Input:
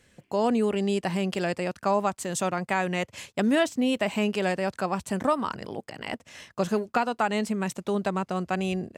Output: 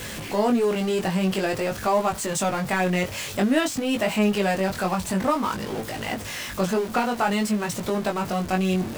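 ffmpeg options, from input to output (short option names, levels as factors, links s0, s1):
-af "aeval=exprs='val(0)+0.5*0.0335*sgn(val(0))':c=same,flanger=delay=18:depth=4:speed=0.51,volume=1.58"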